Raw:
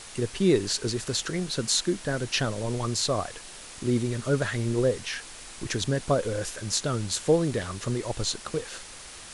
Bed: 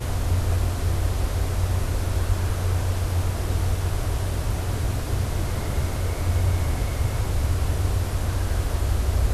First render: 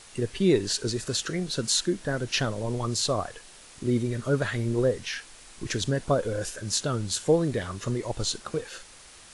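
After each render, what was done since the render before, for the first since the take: noise print and reduce 6 dB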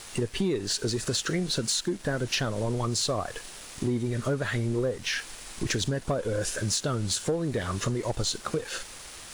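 compressor 6:1, threshold -32 dBFS, peak gain reduction 15 dB; sample leveller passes 2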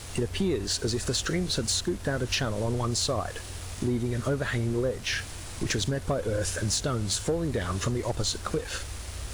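add bed -16.5 dB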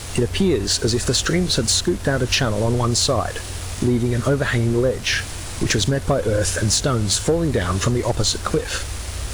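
gain +9 dB

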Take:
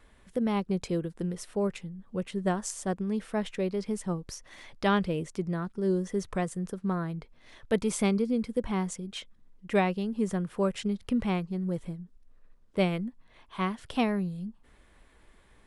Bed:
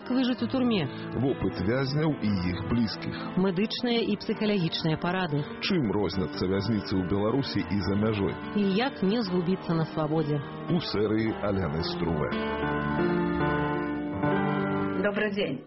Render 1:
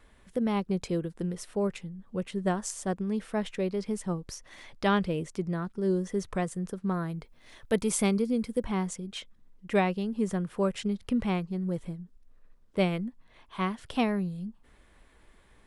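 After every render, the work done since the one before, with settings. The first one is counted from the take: 6.94–8.64 high shelf 9500 Hz +11.5 dB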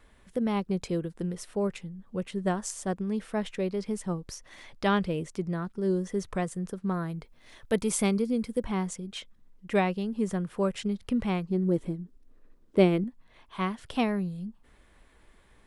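11.49–13.04 bell 320 Hz +11.5 dB 1.1 oct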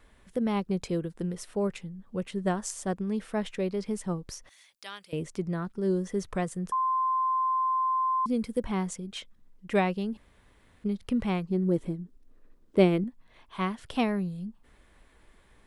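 4.49–5.13 differentiator; 6.72–8.26 bleep 1040 Hz -23.5 dBFS; 10.17–10.84 room tone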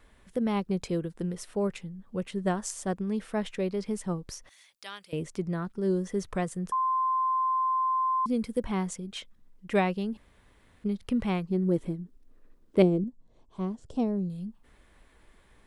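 12.82–14.3 EQ curve 470 Hz 0 dB, 810 Hz -8 dB, 2000 Hz -23 dB, 3400 Hz -16 dB, 7400 Hz -2 dB, 12000 Hz -23 dB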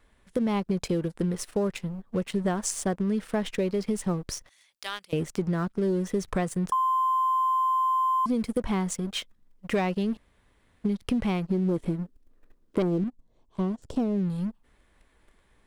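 sample leveller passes 2; compressor, threshold -23 dBFS, peak gain reduction 10 dB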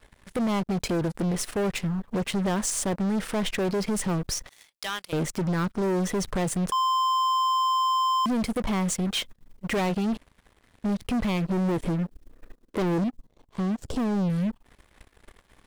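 limiter -22 dBFS, peak gain reduction 7.5 dB; sample leveller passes 3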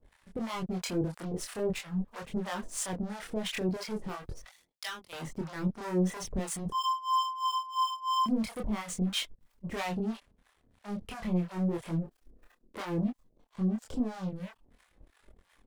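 harmonic tremolo 3 Hz, depth 100%, crossover 660 Hz; chorus voices 2, 0.42 Hz, delay 25 ms, depth 2.9 ms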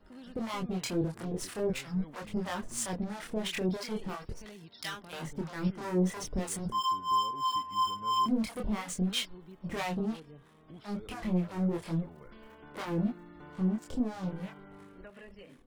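add bed -24 dB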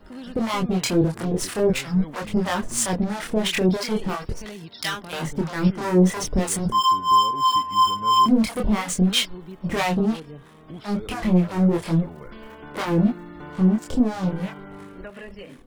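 gain +11.5 dB

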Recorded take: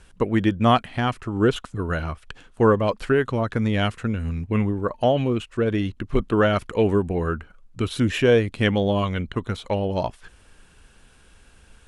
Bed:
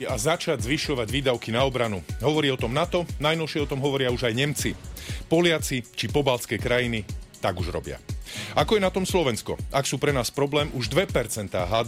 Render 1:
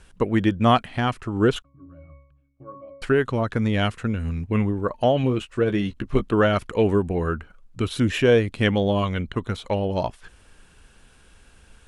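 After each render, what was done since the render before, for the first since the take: 1.62–3.02 octave resonator C#, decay 0.68 s; 5.22–6.22 doubler 15 ms -8 dB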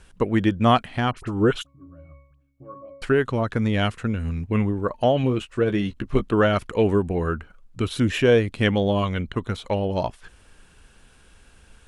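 1.11–2.86 dispersion highs, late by 49 ms, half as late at 1600 Hz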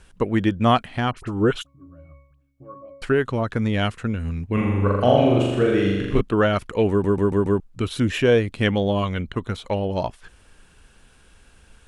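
4.53–6.21 flutter echo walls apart 7 m, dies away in 1.3 s; 6.9 stutter in place 0.14 s, 5 plays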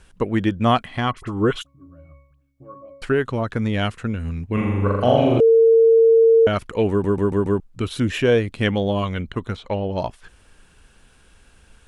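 0.83–1.59 small resonant body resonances 1100/2000/3300 Hz, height 10 dB; 5.4–6.47 bleep 454 Hz -9.5 dBFS; 9.55–9.98 air absorption 98 m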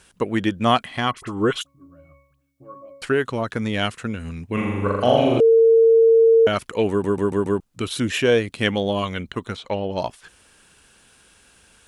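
HPF 170 Hz 6 dB/oct; high shelf 3500 Hz +7.5 dB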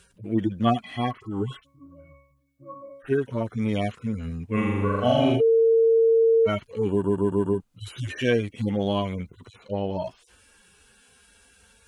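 median-filter separation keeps harmonic; dynamic EQ 500 Hz, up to -6 dB, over -28 dBFS, Q 2.4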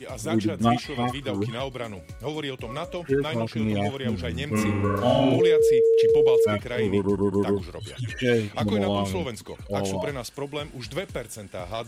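add bed -8.5 dB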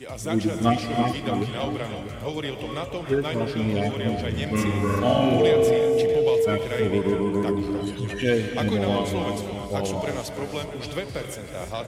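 outdoor echo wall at 110 m, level -10 dB; non-linear reverb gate 0.38 s rising, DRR 6 dB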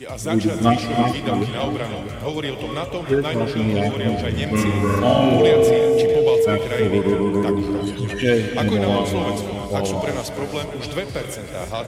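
gain +4.5 dB

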